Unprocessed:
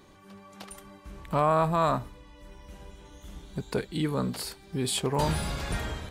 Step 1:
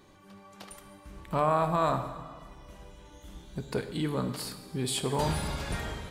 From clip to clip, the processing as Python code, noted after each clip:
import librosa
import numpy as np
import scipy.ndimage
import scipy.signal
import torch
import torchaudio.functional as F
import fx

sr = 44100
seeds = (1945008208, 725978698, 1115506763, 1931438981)

y = fx.rev_plate(x, sr, seeds[0], rt60_s=1.7, hf_ratio=0.8, predelay_ms=0, drr_db=8.0)
y = y * librosa.db_to_amplitude(-2.5)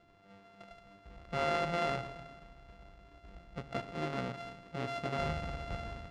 y = np.r_[np.sort(x[:len(x) // 64 * 64].reshape(-1, 64), axis=1).ravel(), x[len(x) // 64 * 64:]]
y = scipy.signal.sosfilt(scipy.signal.butter(2, 3400.0, 'lowpass', fs=sr, output='sos'), y)
y = y * librosa.db_to_amplitude(-6.0)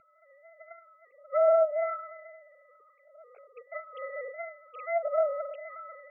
y = fx.sine_speech(x, sr)
y = fx.phaser_stages(y, sr, stages=12, low_hz=300.0, high_hz=1100.0, hz=0.52, feedback_pct=25)
y = fx.env_lowpass_down(y, sr, base_hz=970.0, full_db=-31.0)
y = y * librosa.db_to_amplitude(9.0)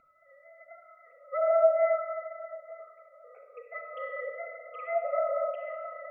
y = x + 10.0 ** (-20.0 / 20.0) * np.pad(x, (int(888 * sr / 1000.0), 0))[:len(x)]
y = fx.room_shoebox(y, sr, seeds[1], volume_m3=2200.0, walls='mixed', distance_m=1.9)
y = y * librosa.db_to_amplitude(-1.5)